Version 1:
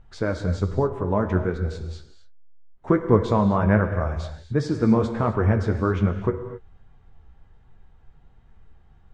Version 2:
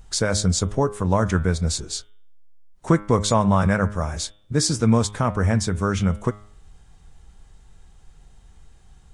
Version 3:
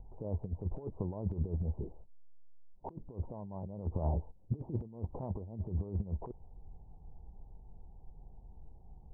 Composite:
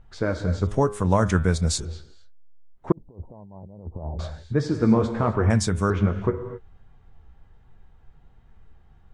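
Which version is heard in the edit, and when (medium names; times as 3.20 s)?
1
0.67–1.85 s: from 2
2.92–4.19 s: from 3
5.50–5.90 s: from 2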